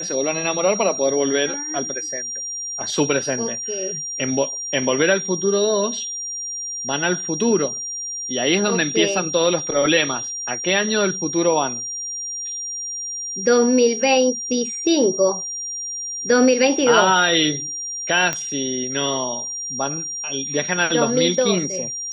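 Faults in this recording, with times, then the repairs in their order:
whistle 5,700 Hz −26 dBFS
0:18.33: click −7 dBFS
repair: click removal
notch filter 5,700 Hz, Q 30

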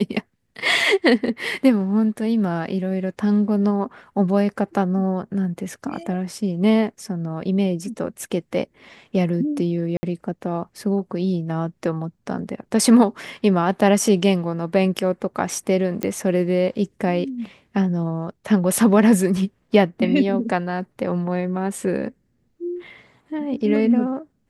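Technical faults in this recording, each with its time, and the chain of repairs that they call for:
0:09.97–0:10.03: drop-out 60 ms
0:16.03: click −10 dBFS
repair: click removal
repair the gap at 0:09.97, 60 ms

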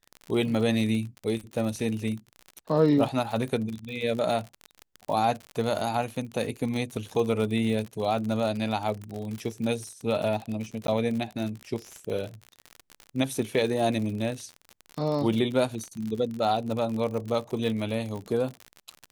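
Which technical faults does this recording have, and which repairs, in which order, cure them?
surface crackle 57 per second −31 dBFS
0:10.87–0:10.88: drop-out 12 ms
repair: click removal
repair the gap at 0:10.87, 12 ms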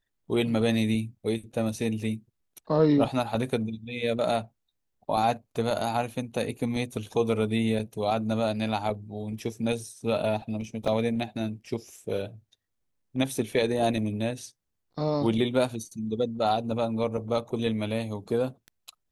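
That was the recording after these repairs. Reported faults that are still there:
none of them is left

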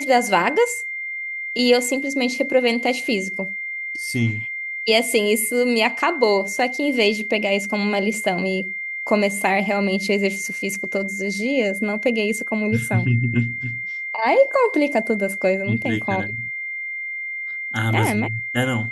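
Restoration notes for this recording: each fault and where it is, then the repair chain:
whistle 2,100 Hz −26 dBFS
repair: notch filter 2,100 Hz, Q 30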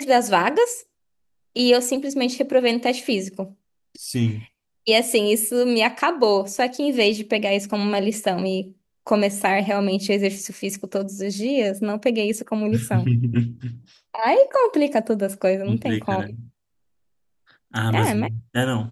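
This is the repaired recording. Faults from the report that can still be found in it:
none of them is left

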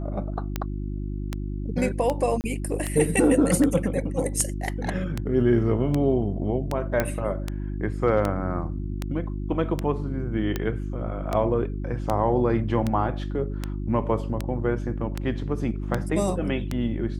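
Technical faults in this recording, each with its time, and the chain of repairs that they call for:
mains hum 50 Hz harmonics 7 −30 dBFS
scratch tick 78 rpm −12 dBFS
0:02.41–0:02.44: drop-out 29 ms
0:07.00: click −9 dBFS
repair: click removal
hum removal 50 Hz, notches 7
repair the gap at 0:02.41, 29 ms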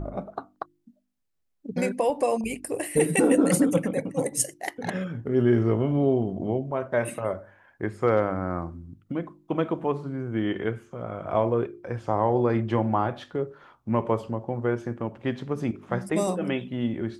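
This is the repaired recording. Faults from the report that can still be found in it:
0:07.00: click

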